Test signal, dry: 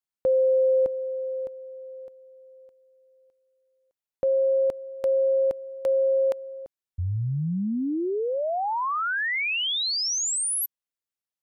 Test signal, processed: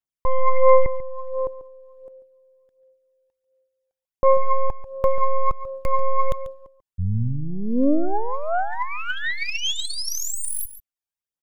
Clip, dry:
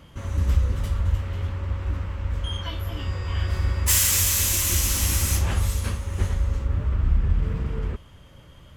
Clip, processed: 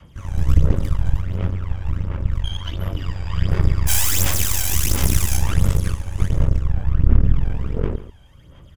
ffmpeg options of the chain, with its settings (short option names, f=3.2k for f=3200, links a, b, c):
-filter_complex "[0:a]adynamicequalizer=threshold=0.01:dfrequency=350:dqfactor=1.2:tfrequency=350:tqfactor=1.2:attack=5:release=100:ratio=0.375:range=3:mode=boostabove:tftype=bell,aeval=exprs='0.473*(cos(1*acos(clip(val(0)/0.473,-1,1)))-cos(1*PI/2))+0.133*(cos(6*acos(clip(val(0)/0.473,-1,1)))-cos(6*PI/2))':c=same,bandreject=f=4.2k:w=11,aphaser=in_gain=1:out_gain=1:delay=1.3:decay=0.63:speed=1.4:type=sinusoidal,asplit=2[a][b];[b]aecho=0:1:141:0.2[c];[a][c]amix=inputs=2:normalize=0,volume=-5dB"